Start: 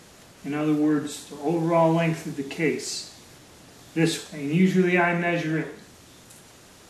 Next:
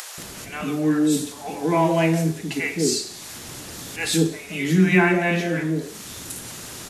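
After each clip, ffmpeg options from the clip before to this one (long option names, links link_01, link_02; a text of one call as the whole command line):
ffmpeg -i in.wav -filter_complex "[0:a]acompressor=mode=upward:threshold=-31dB:ratio=2.5,acrossover=split=630[link_01][link_02];[link_01]adelay=180[link_03];[link_03][link_02]amix=inputs=2:normalize=0,crystalizer=i=1:c=0,volume=3dB" out.wav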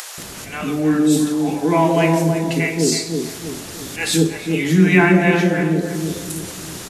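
ffmpeg -i in.wav -filter_complex "[0:a]asplit=2[link_01][link_02];[link_02]adelay=323,lowpass=frequency=940:poles=1,volume=-4dB,asplit=2[link_03][link_04];[link_04]adelay=323,lowpass=frequency=940:poles=1,volume=0.46,asplit=2[link_05][link_06];[link_06]adelay=323,lowpass=frequency=940:poles=1,volume=0.46,asplit=2[link_07][link_08];[link_08]adelay=323,lowpass=frequency=940:poles=1,volume=0.46,asplit=2[link_09][link_10];[link_10]adelay=323,lowpass=frequency=940:poles=1,volume=0.46,asplit=2[link_11][link_12];[link_12]adelay=323,lowpass=frequency=940:poles=1,volume=0.46[link_13];[link_01][link_03][link_05][link_07][link_09][link_11][link_13]amix=inputs=7:normalize=0,volume=3.5dB" out.wav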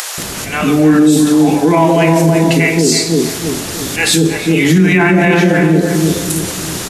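ffmpeg -i in.wav -af "alimiter=level_in=11.5dB:limit=-1dB:release=50:level=0:latency=1,volume=-1dB" out.wav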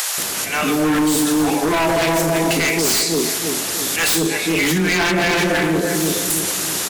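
ffmpeg -i in.wav -af "lowpass=frequency=2400:poles=1,aemphasis=mode=production:type=riaa,aeval=exprs='0.282*(abs(mod(val(0)/0.282+3,4)-2)-1)':channel_layout=same,volume=-1dB" out.wav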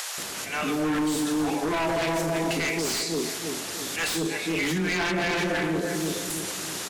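ffmpeg -i in.wav -af "highshelf=frequency=11000:gain=-12,volume=-8.5dB" out.wav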